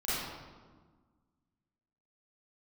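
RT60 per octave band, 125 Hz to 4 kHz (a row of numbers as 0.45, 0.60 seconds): 1.9, 2.0, 1.5, 1.4, 1.1, 0.90 seconds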